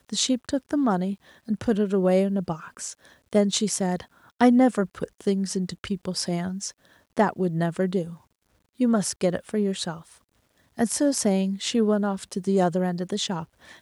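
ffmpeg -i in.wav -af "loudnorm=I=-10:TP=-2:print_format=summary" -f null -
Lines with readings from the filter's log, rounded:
Input Integrated:    -24.9 LUFS
Input True Peak:      -7.8 dBTP
Input LRA:             3.0 LU
Input Threshold:     -35.5 LUFS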